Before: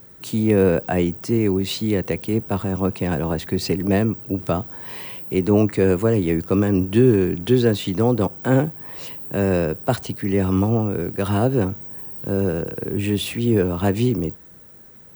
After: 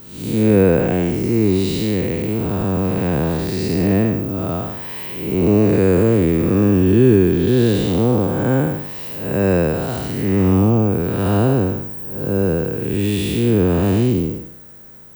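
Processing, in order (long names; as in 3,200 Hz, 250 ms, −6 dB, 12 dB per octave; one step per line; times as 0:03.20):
spectrum smeared in time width 279 ms
level +6 dB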